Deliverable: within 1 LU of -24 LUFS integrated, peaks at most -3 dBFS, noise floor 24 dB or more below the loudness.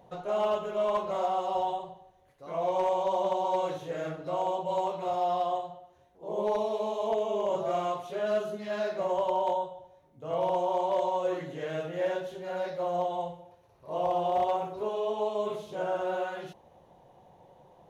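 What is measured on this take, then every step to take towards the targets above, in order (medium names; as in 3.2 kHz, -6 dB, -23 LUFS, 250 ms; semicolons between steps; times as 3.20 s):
clipped samples 0.2%; clipping level -20.5 dBFS; loudness -30.5 LUFS; peak level -20.5 dBFS; loudness target -24.0 LUFS
-> clip repair -20.5 dBFS; trim +6.5 dB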